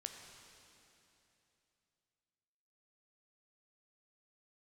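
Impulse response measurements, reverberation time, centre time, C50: 3.0 s, 70 ms, 4.5 dB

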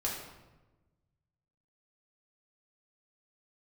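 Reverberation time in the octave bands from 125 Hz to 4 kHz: 2.0, 1.5, 1.2, 1.0, 0.90, 0.75 s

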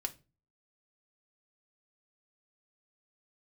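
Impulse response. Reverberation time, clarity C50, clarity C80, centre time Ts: 0.30 s, 19.0 dB, 26.0 dB, 4 ms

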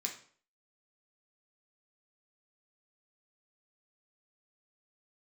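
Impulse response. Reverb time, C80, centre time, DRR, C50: 0.50 s, 13.5 dB, 18 ms, 0.0 dB, 8.5 dB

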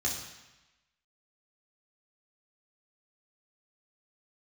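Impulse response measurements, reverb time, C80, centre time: 1.0 s, 7.0 dB, 41 ms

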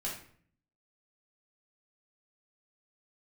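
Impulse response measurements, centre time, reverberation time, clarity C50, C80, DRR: 34 ms, 0.55 s, 4.5 dB, 9.5 dB, -5.0 dB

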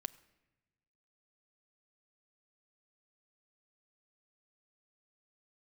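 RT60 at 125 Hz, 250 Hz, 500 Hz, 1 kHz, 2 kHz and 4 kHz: 1.7, 1.4, 1.1, 0.95, 1.1, 0.75 s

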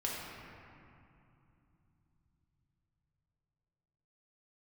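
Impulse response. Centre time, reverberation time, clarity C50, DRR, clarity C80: 0.14 s, 2.7 s, -1.5 dB, -5.0 dB, 0.5 dB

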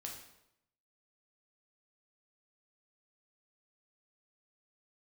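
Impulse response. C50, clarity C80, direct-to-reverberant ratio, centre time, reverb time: 5.0 dB, 8.0 dB, -0.5 dB, 33 ms, 0.80 s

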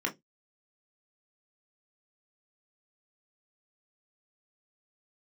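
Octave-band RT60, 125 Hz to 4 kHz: 0.25, 0.20, 0.20, 0.10, 0.15, 0.15 s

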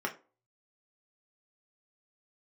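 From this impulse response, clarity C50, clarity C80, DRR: 14.5 dB, 20.5 dB, 0.0 dB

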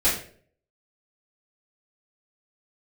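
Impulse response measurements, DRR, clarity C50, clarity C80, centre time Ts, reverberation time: -11.0 dB, 5.0 dB, 9.5 dB, 36 ms, 0.50 s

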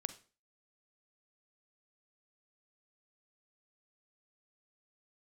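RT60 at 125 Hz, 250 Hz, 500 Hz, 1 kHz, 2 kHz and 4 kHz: 0.40, 0.45, 0.40, 0.35, 0.35, 0.35 s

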